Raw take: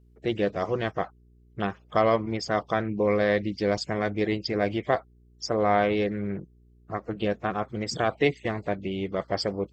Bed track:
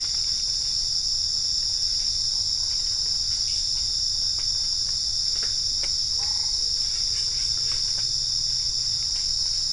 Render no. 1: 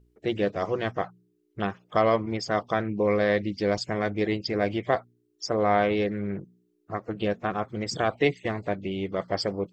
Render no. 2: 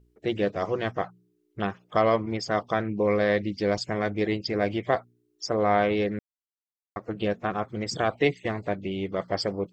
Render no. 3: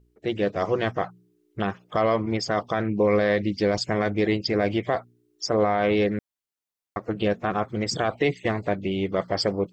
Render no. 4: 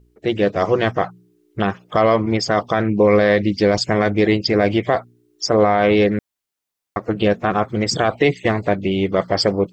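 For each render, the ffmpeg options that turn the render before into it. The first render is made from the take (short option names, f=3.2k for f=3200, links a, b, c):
-af "bandreject=f=60:t=h:w=4,bandreject=f=120:t=h:w=4,bandreject=f=180:t=h:w=4,bandreject=f=240:t=h:w=4"
-filter_complex "[0:a]asplit=3[a][b][c];[a]atrim=end=6.19,asetpts=PTS-STARTPTS,afade=t=out:st=6.186:d=0.004:c=hsin[d];[b]atrim=start=6.19:end=6.96,asetpts=PTS-STARTPTS,volume=0[e];[c]atrim=start=6.96,asetpts=PTS-STARTPTS,afade=t=in:d=0.004:c=hsin[f];[d][e][f]concat=n=3:v=0:a=1"
-af "dynaudnorm=f=360:g=3:m=4.5dB,alimiter=limit=-11.5dB:level=0:latency=1:release=30"
-af "volume=7dB"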